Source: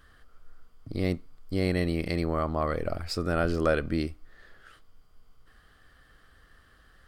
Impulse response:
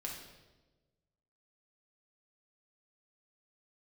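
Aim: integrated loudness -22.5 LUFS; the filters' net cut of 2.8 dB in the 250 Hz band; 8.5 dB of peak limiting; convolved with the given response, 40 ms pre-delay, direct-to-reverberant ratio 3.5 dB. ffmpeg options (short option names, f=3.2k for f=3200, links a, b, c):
-filter_complex "[0:a]equalizer=f=250:t=o:g=-4,alimiter=limit=-20.5dB:level=0:latency=1,asplit=2[a][b];[1:a]atrim=start_sample=2205,adelay=40[c];[b][c]afir=irnorm=-1:irlink=0,volume=-3dB[d];[a][d]amix=inputs=2:normalize=0,volume=9dB"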